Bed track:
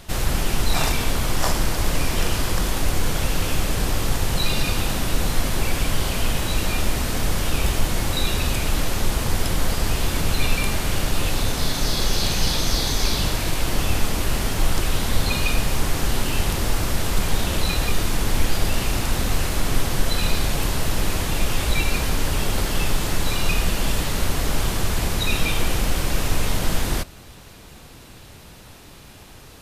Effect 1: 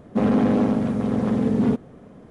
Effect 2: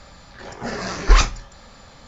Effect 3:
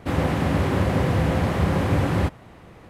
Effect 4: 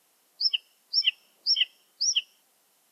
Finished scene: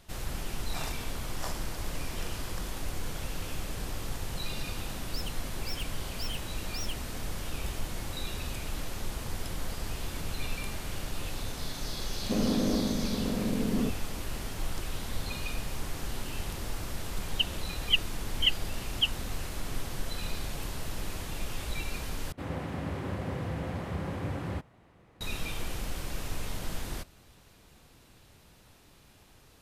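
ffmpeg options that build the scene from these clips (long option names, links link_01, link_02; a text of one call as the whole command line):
ffmpeg -i bed.wav -i cue0.wav -i cue1.wav -i cue2.wav -i cue3.wav -filter_complex "[4:a]asplit=2[link_01][link_02];[0:a]volume=-14dB[link_03];[link_01]asoftclip=type=hard:threshold=-28.5dB[link_04];[1:a]highpass=100,equalizer=frequency=170:width_type=q:width=4:gain=6,equalizer=frequency=320:width_type=q:width=4:gain=5,equalizer=frequency=580:width_type=q:width=4:gain=4,equalizer=frequency=870:width_type=q:width=4:gain=-5,lowpass=frequency=2000:width=0.5412,lowpass=frequency=2000:width=1.3066[link_05];[link_02]aresample=8000,aresample=44100[link_06];[link_03]asplit=2[link_07][link_08];[link_07]atrim=end=22.324[link_09];[3:a]atrim=end=2.89,asetpts=PTS-STARTPTS,volume=-13.5dB[link_10];[link_08]atrim=start=25.206[link_11];[link_04]atrim=end=2.91,asetpts=PTS-STARTPTS,volume=-10dB,afade=type=in:duration=0.004:curve=hsin,afade=type=out:start_time=2.906:duration=0.004:curve=hsin,adelay=208593S[link_12];[link_05]atrim=end=2.3,asetpts=PTS-STARTPTS,volume=-11.5dB,afade=type=in:duration=0.004:curve=hsin,afade=type=out:start_time=2.296:duration=0.004:curve=hsin,adelay=12140[link_13];[link_06]atrim=end=2.91,asetpts=PTS-STARTPTS,volume=-0.5dB,afade=type=in:duration=0.004:curve=hsin,afade=type=out:start_time=2.906:duration=0.004:curve=hsin,adelay=16860[link_14];[link_09][link_10]acrossfade=duration=0.004:curve1=hsin:curve2=hsin[link_15];[link_15][link_11]acrossfade=duration=0.004:curve1=hsin:curve2=hsin[link_16];[link_16][link_12][link_13][link_14]amix=inputs=4:normalize=0" out.wav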